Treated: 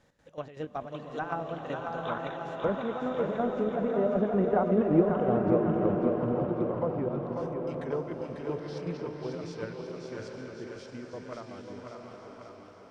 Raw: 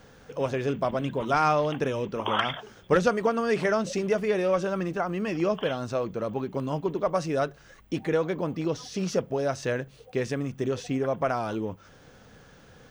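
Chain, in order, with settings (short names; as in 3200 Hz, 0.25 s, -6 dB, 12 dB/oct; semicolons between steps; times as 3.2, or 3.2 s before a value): Doppler pass-by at 4.85, 32 m/s, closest 19 m; in parallel at -0.5 dB: level quantiser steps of 22 dB; on the sum: chopper 5.3 Hz, depth 65%, duty 55%; treble ducked by the level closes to 760 Hz, closed at -32 dBFS; on a send: thinning echo 0.544 s, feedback 61%, high-pass 290 Hz, level -4.5 dB; on the sum: bloom reverb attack 0.87 s, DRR 3 dB; gain +4.5 dB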